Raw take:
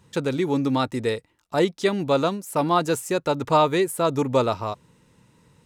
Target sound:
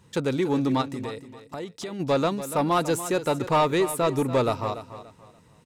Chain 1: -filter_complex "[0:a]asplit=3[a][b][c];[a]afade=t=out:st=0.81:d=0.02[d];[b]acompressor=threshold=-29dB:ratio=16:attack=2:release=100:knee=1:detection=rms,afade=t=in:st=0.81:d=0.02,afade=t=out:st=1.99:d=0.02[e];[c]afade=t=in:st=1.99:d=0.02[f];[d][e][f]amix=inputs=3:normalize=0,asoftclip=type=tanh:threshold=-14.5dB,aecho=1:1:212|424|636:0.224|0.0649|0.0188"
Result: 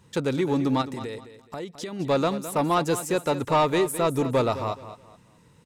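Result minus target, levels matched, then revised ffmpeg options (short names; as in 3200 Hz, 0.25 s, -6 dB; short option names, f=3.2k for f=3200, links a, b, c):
echo 76 ms early
-filter_complex "[0:a]asplit=3[a][b][c];[a]afade=t=out:st=0.81:d=0.02[d];[b]acompressor=threshold=-29dB:ratio=16:attack=2:release=100:knee=1:detection=rms,afade=t=in:st=0.81:d=0.02,afade=t=out:st=1.99:d=0.02[e];[c]afade=t=in:st=1.99:d=0.02[f];[d][e][f]amix=inputs=3:normalize=0,asoftclip=type=tanh:threshold=-14.5dB,aecho=1:1:288|576|864:0.224|0.0649|0.0188"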